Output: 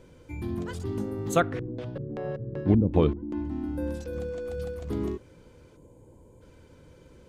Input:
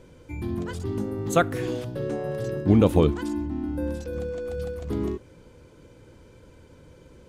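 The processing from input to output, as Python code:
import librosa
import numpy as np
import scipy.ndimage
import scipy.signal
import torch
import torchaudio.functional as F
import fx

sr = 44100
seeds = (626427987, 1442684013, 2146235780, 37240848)

y = fx.filter_lfo_lowpass(x, sr, shape='square', hz=2.6, low_hz=260.0, high_hz=3400.0, q=0.74, at=(1.4, 3.45))
y = fx.spec_box(y, sr, start_s=5.77, length_s=0.65, low_hz=1100.0, high_hz=6400.0, gain_db=-14)
y = y * librosa.db_to_amplitude(-2.5)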